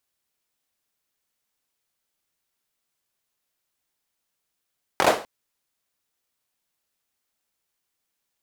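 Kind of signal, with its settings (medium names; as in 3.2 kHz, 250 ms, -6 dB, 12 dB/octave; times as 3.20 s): hand clap length 0.25 s, apart 22 ms, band 610 Hz, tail 0.36 s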